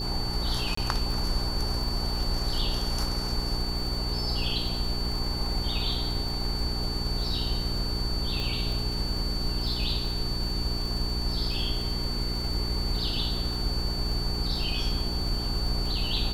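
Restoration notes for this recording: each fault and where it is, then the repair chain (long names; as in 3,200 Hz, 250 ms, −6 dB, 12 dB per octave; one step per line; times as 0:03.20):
surface crackle 42 per second −33 dBFS
mains hum 60 Hz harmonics 7 −33 dBFS
whistle 4,500 Hz −33 dBFS
0:00.75–0:00.77: drop-out 24 ms
0:08.40: click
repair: click removal
notch filter 4,500 Hz, Q 30
hum removal 60 Hz, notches 7
repair the gap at 0:00.75, 24 ms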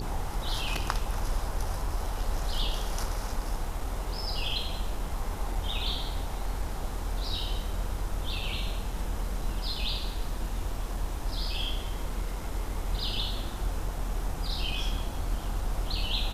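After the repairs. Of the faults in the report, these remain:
0:08.40: click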